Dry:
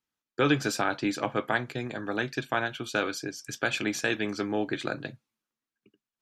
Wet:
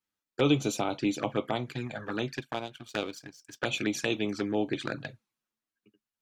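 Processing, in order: envelope flanger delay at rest 10.1 ms, full sweep at -25.5 dBFS; 2.37–3.62 power-law curve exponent 1.4; gain +1 dB

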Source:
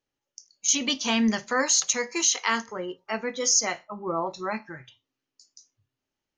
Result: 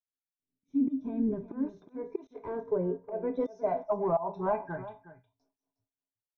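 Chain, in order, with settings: expander -56 dBFS; ripple EQ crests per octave 1.6, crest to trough 16 dB; auto swell 0.324 s; compressor 4:1, threshold -30 dBFS, peak gain reduction 9.5 dB; small resonant body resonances 840/1200/2000/3600 Hz, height 13 dB, ringing for 90 ms; soft clip -28 dBFS, distortion -14 dB; low-pass sweep 240 Hz -> 770 Hz, 0.35–4.3; echo 0.362 s -15 dB; gain +3.5 dB

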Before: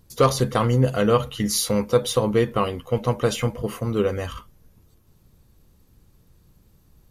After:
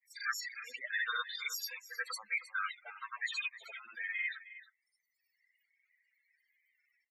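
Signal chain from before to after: reverb removal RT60 1.5 s; in parallel at +1 dB: compressor 6:1, threshold -33 dBFS, peak gain reduction 19.5 dB; on the sum: resonant high-pass 1700 Hz, resonance Q 6.5; formant shift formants +3 st; grains 0.1 s, spray 65 ms, pitch spread up and down by 0 st; soft clip -17.5 dBFS, distortion -13 dB; loudest bins only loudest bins 16; on a send: echo 0.313 s -15.5 dB; on the sum: gain -8 dB

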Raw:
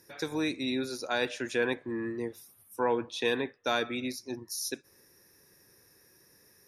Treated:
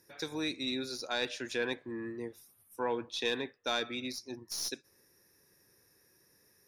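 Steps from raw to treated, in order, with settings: tracing distortion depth 0.024 ms; dynamic EQ 4500 Hz, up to +8 dB, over -51 dBFS, Q 1.1; gain -5.5 dB

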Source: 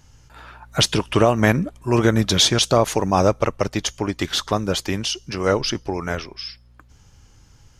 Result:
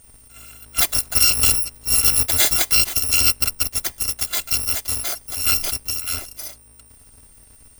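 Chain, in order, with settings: FFT order left unsorted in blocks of 256 samples; whine 8800 Hz -50 dBFS

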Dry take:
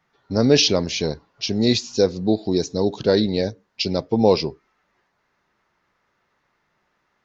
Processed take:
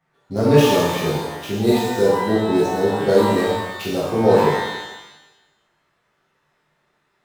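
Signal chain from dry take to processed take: median filter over 9 samples; shimmer reverb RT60 1 s, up +12 st, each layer -8 dB, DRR -6.5 dB; gain -5 dB

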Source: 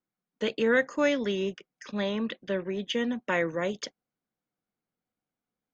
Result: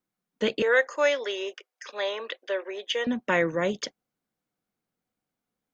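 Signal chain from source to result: 0.62–3.07 inverse Chebyshev high-pass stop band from 170 Hz, stop band 50 dB; gain +3.5 dB

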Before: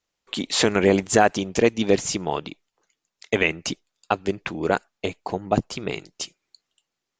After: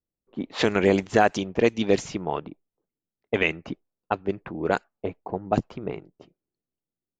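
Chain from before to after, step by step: low-pass opened by the level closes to 330 Hz, open at -14.5 dBFS; gain -2 dB

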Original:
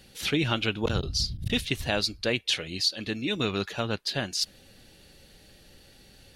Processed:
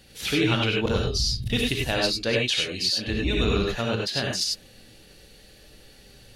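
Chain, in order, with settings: 3.06–3.71 octaver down 2 oct, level +2 dB; non-linear reverb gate 0.12 s rising, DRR -1 dB

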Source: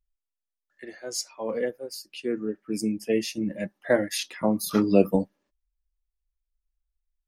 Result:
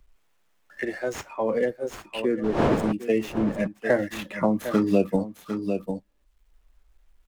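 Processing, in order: median filter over 9 samples; 2.43–2.91 wind noise 520 Hz -28 dBFS; on a send: echo 0.75 s -14.5 dB; on the sum: three-band squash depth 70%; gain +1.5 dB

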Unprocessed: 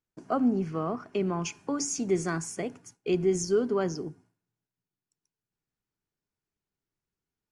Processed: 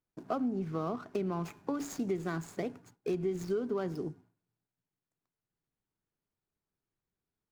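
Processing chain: median filter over 15 samples; compressor 5:1, threshold -30 dBFS, peak gain reduction 9.5 dB

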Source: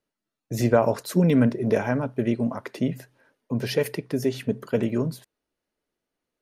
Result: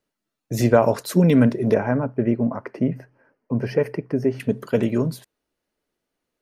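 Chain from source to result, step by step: 1.74–4.4 running mean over 12 samples; gain +3.5 dB

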